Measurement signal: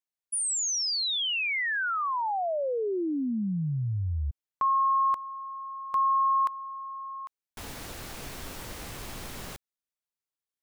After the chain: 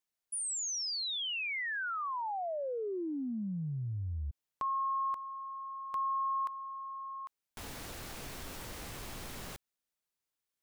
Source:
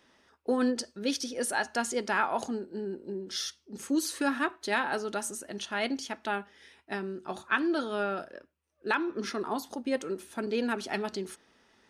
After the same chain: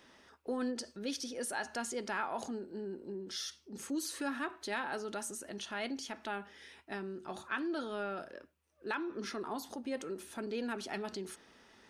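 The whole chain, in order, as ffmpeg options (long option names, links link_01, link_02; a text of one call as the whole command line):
ffmpeg -i in.wav -af "acompressor=threshold=-58dB:ratio=1.5:attack=2.4:release=30:detection=peak,volume=3dB" out.wav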